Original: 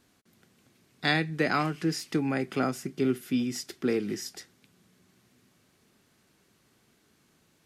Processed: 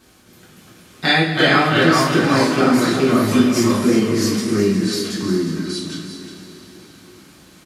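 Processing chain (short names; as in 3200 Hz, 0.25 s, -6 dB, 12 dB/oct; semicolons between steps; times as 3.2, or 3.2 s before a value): 3.67–4.21 treble ducked by the level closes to 1800 Hz; echoes that change speed 0.195 s, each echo -2 st, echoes 2; in parallel at +2 dB: compressor, threshold -35 dBFS, peak gain reduction 14.5 dB; on the sum: bell 110 Hz -5 dB 0.56 oct; on a send: echo 0.36 s -11 dB; on the sum: two-slope reverb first 0.35 s, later 4.3 s, from -17 dB, DRR -5.5 dB; gain +2.5 dB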